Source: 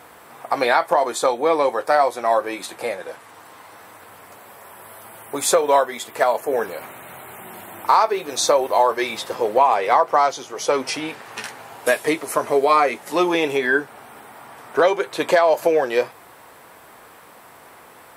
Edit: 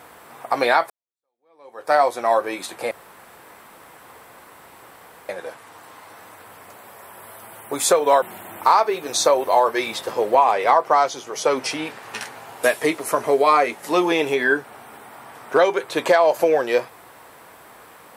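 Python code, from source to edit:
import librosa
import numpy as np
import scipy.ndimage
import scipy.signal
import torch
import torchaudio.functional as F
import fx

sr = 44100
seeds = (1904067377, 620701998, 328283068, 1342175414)

y = fx.edit(x, sr, fx.fade_in_span(start_s=0.9, length_s=1.02, curve='exp'),
    fx.insert_room_tone(at_s=2.91, length_s=2.38),
    fx.cut(start_s=5.84, length_s=1.61), tone=tone)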